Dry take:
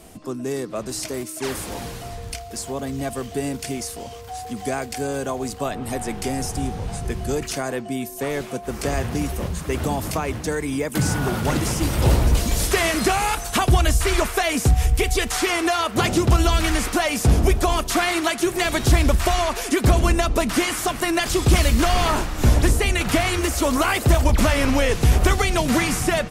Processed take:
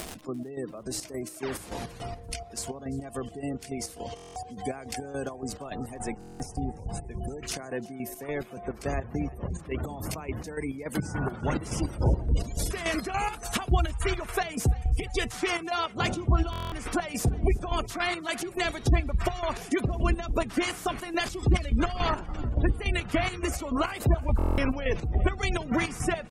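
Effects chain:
surface crackle 370 per second −29 dBFS
upward compression, threshold −22 dBFS
gate on every frequency bin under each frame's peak −25 dB strong
square-wave tremolo 3.5 Hz, depth 65%, duty 50%
echo with shifted repeats 344 ms, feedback 44%, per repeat +58 Hz, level −22 dB
buffer that repeats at 0:04.15/0:06.19/0:16.51/0:24.37, samples 1,024, times 8
level −6 dB

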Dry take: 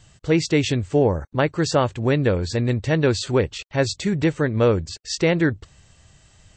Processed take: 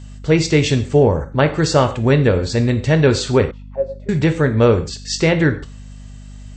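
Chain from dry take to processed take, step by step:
reverb whose tail is shaped and stops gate 170 ms falling, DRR 7 dB
0:03.51–0:04.09: envelope filter 540–1,300 Hz, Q 10, down, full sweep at −21 dBFS
mains hum 50 Hz, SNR 19 dB
level +4 dB

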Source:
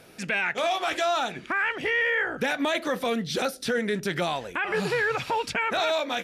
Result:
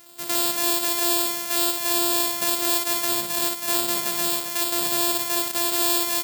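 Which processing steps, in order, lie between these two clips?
samples sorted by size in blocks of 128 samples
RIAA equalisation recording
on a send: loudspeakers that aren't time-aligned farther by 20 metres −4 dB, 93 metres −7 dB
on the sum: level −2.5 dB

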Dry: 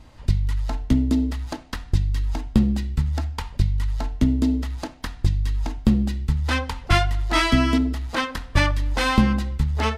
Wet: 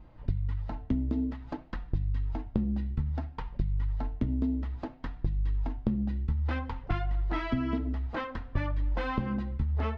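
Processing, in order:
flanger 0.56 Hz, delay 5.4 ms, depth 5.6 ms, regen −35%
downward compressor 6 to 1, threshold −24 dBFS, peak gain reduction 9 dB
head-to-tape spacing loss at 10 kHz 39 dB

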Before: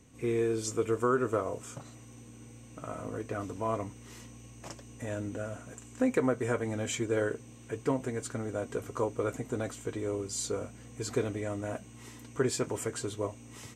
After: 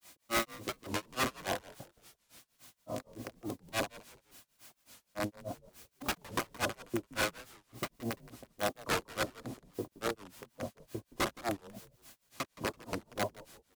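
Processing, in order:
Butterworth low-pass 950 Hz 36 dB per octave
spectral tilt +3 dB per octave
noise gate −45 dBFS, range −28 dB
transient designer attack −5 dB, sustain +3 dB
in parallel at +1 dB: downward compressor 5 to 1, threshold −50 dBFS, peak gain reduction 19 dB
on the sum: background noise white −59 dBFS
wrap-around overflow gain 29.5 dB
notch comb filter 450 Hz
granular cloud 173 ms, grains 3.5 per second, pitch spread up and down by 0 semitones
echo with shifted repeats 170 ms, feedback 35%, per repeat −84 Hz, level −18.5 dB
wow of a warped record 45 rpm, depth 250 cents
level +7.5 dB

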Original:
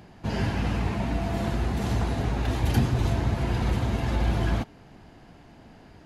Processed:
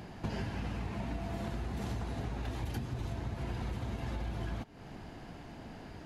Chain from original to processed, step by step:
downward compressor 16 to 1, threshold −36 dBFS, peak gain reduction 20.5 dB
level +2.5 dB

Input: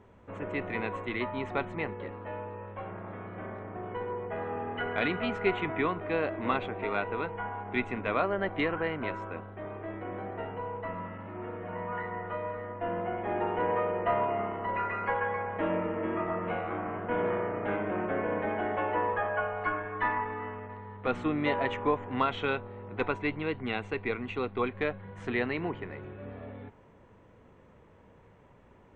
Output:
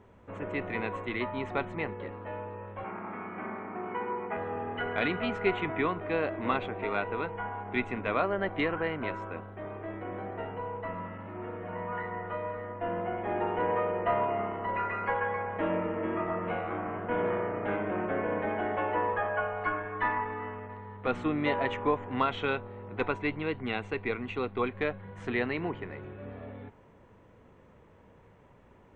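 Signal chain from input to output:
0:02.84–0:04.37: loudspeaker in its box 200–3,200 Hz, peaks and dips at 220 Hz +9 dB, 370 Hz +3 dB, 550 Hz −6 dB, 870 Hz +7 dB, 1,300 Hz +7 dB, 2,300 Hz +9 dB

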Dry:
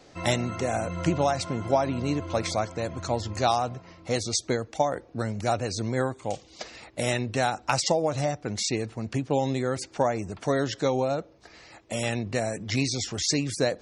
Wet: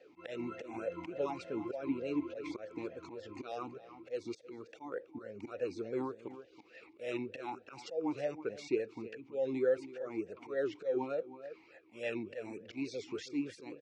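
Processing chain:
volume swells 174 ms
slap from a distant wall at 56 metres, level −14 dB
formant filter swept between two vowels e-u 3.4 Hz
level +3 dB

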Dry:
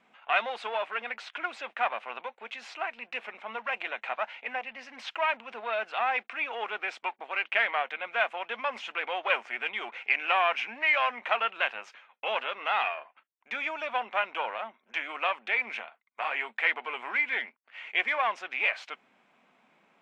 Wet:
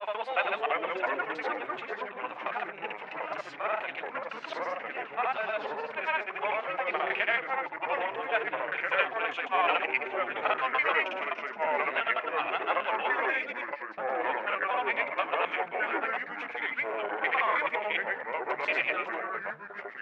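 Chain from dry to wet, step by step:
slices reordered back to front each 109 ms, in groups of 8
high-shelf EQ 4,200 Hz −7 dB
granular cloud, pitch spread up and down by 0 semitones
delay with pitch and tempo change per echo 275 ms, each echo −3 semitones, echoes 3
on a send: convolution reverb RT60 0.60 s, pre-delay 3 ms, DRR 20 dB

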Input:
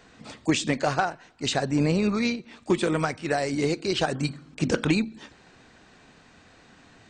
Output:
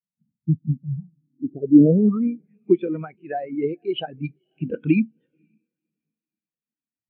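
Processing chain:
feedback delay with all-pass diffusion 527 ms, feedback 44%, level −16 dB
low-pass filter sweep 180 Hz → 2,900 Hz, 0:01.21–0:02.64
every bin expanded away from the loudest bin 2.5 to 1
level +4 dB

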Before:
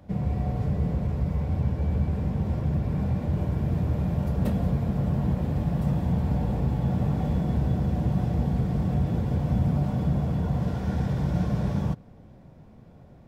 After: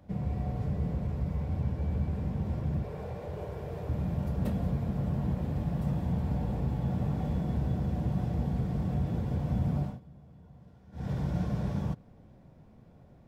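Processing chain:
0:02.84–0:03.89: low shelf with overshoot 340 Hz −7.5 dB, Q 3
0:09.81–0:11.11: duck −22 dB, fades 0.19 s
level −5.5 dB

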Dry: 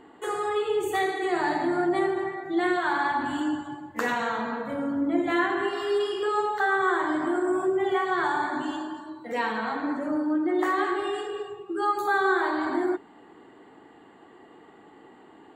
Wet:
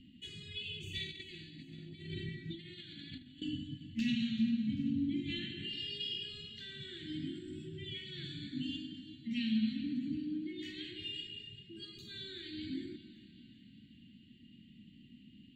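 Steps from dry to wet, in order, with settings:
Chebyshev band-stop filter 230–2,700 Hz, order 4
0:01.11–0:03.42: compressor whose output falls as the input rises −50 dBFS, ratio −0.5
high-frequency loss of the air 240 metres
echo with a time of its own for lows and highs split 890 Hz, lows 152 ms, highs 389 ms, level −16 dB
level +6 dB

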